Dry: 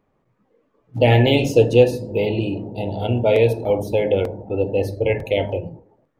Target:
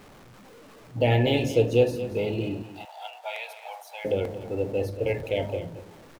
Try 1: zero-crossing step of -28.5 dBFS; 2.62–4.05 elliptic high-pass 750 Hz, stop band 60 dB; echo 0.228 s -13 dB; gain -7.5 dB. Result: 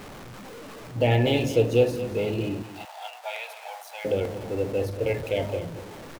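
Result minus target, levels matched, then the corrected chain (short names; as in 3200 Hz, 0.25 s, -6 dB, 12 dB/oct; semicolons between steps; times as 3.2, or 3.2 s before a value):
zero-crossing step: distortion +8 dB
zero-crossing step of -37 dBFS; 2.62–4.05 elliptic high-pass 750 Hz, stop band 60 dB; echo 0.228 s -13 dB; gain -7.5 dB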